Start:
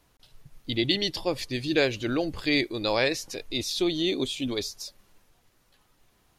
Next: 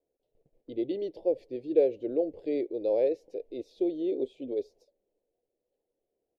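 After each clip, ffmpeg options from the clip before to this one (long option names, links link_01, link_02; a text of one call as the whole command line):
ffmpeg -i in.wav -af "firequalizer=gain_entry='entry(160,0);entry(480,13);entry(1200,-30);entry(2200,-17)':delay=0.05:min_phase=1,agate=range=-9dB:threshold=-47dB:ratio=16:detection=peak,bass=frequency=250:gain=-15,treble=frequency=4000:gain=-13,volume=-6.5dB" out.wav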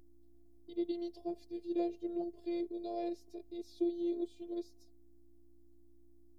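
ffmpeg -i in.wav -af "aexciter=amount=4.2:drive=4.2:freq=3900,aeval=exprs='val(0)+0.00355*(sin(2*PI*60*n/s)+sin(2*PI*2*60*n/s)/2+sin(2*PI*3*60*n/s)/3+sin(2*PI*4*60*n/s)/4+sin(2*PI*5*60*n/s)/5)':channel_layout=same,afftfilt=real='hypot(re,im)*cos(PI*b)':imag='0':win_size=512:overlap=0.75,volume=-4.5dB" out.wav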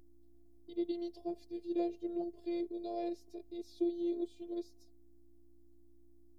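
ffmpeg -i in.wav -af anull out.wav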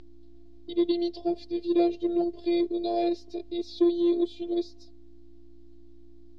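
ffmpeg -i in.wav -filter_complex "[0:a]asplit=2[link_01][link_02];[link_02]asoftclip=type=tanh:threshold=-31.5dB,volume=-7dB[link_03];[link_01][link_03]amix=inputs=2:normalize=0,lowpass=frequency=4100:width_type=q:width=2.1,volume=9dB" out.wav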